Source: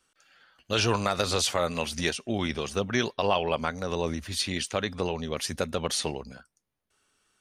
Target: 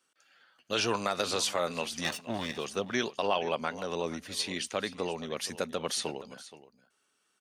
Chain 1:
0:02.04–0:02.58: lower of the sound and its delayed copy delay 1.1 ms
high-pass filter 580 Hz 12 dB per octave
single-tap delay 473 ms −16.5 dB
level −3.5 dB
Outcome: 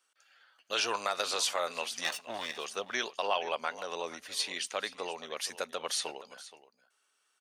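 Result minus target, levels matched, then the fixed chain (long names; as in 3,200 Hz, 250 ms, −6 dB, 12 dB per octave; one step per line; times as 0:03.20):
250 Hz band −10.5 dB
0:02.04–0:02.58: lower of the sound and its delayed copy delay 1.1 ms
high-pass filter 190 Hz 12 dB per octave
single-tap delay 473 ms −16.5 dB
level −3.5 dB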